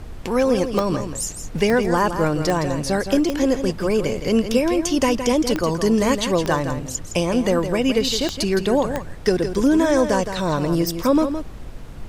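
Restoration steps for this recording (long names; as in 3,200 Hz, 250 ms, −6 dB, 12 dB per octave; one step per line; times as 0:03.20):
click removal
noise reduction from a noise print 30 dB
echo removal 165 ms −9 dB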